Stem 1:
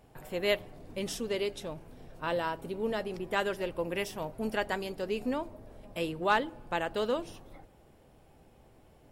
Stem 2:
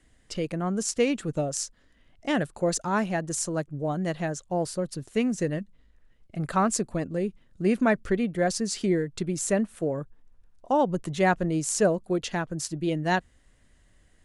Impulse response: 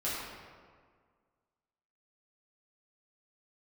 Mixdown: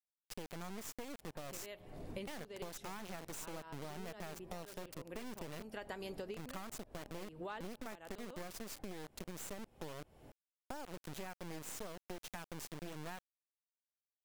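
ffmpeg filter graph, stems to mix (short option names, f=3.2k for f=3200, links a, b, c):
-filter_complex "[0:a]acompressor=threshold=-37dB:ratio=10,adelay=1200,volume=1.5dB[a];[1:a]highpass=f=77:w=0.5412,highpass=f=77:w=1.3066,acompressor=threshold=-31dB:ratio=2.5,acrusher=bits=3:dc=4:mix=0:aa=0.000001,volume=-7.5dB,asplit=2[b][c];[c]apad=whole_len=455015[d];[a][d]sidechaincompress=threshold=-55dB:ratio=4:attack=21:release=227[e];[e][b]amix=inputs=2:normalize=0,acompressor=threshold=-41dB:ratio=6"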